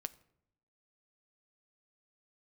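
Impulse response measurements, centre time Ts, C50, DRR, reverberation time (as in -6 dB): 2 ms, 20.0 dB, 12.0 dB, 0.75 s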